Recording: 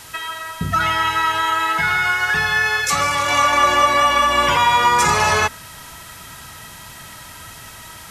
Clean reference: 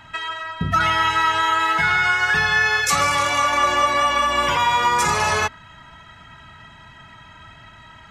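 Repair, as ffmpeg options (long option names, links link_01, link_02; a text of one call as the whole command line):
ffmpeg -i in.wav -af "afwtdn=0.011,asetnsamples=nb_out_samples=441:pad=0,asendcmd='3.28 volume volume -3.5dB',volume=0dB" out.wav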